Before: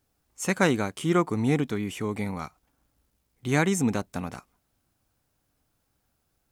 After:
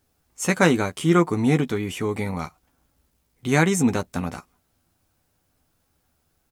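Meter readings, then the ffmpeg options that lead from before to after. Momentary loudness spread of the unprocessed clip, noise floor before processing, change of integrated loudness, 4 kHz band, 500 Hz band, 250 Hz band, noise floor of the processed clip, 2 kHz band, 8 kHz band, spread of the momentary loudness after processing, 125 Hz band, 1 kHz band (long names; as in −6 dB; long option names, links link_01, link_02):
14 LU, −75 dBFS, +4.0 dB, +4.5 dB, +4.5 dB, +4.5 dB, −70 dBFS, +4.5 dB, +4.5 dB, 14 LU, +5.0 dB, +4.5 dB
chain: -filter_complex "[0:a]asplit=2[link_01][link_02];[link_02]adelay=12,volume=-8dB[link_03];[link_01][link_03]amix=inputs=2:normalize=0,volume=4dB"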